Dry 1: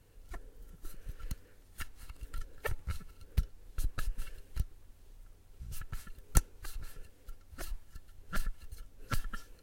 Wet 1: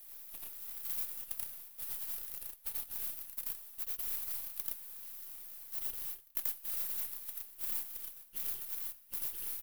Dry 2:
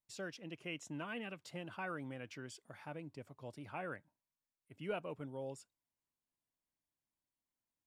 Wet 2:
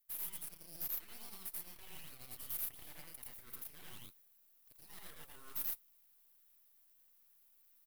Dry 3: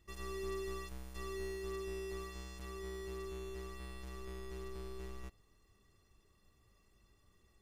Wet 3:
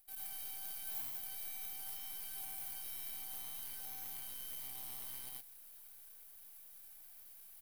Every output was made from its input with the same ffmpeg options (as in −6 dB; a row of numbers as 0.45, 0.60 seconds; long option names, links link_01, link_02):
-af "highpass=1100,areverse,acompressor=threshold=-58dB:ratio=12,areverse,aeval=exprs='abs(val(0))':channel_layout=same,aexciter=amount=11.6:drive=7:freq=9700,aecho=1:1:84.55|116.6:1|0.794,acrusher=bits=2:mode=log:mix=0:aa=0.000001,volume=3.5dB"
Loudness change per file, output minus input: +4.5, +2.0, +1.5 LU